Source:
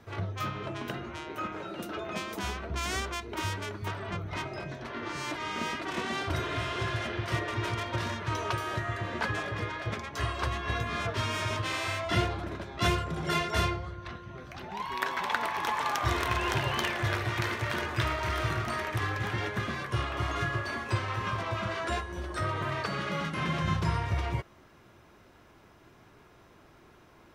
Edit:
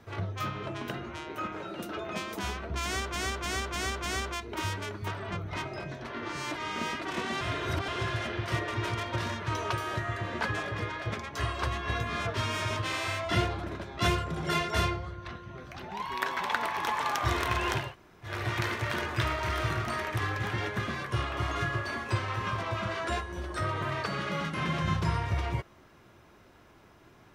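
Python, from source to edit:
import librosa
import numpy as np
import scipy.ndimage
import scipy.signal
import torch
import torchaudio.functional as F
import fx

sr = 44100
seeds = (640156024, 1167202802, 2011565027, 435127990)

y = fx.edit(x, sr, fx.repeat(start_s=2.84, length_s=0.3, count=5),
    fx.reverse_span(start_s=6.21, length_s=0.47),
    fx.room_tone_fill(start_s=16.64, length_s=0.49, crossfade_s=0.24), tone=tone)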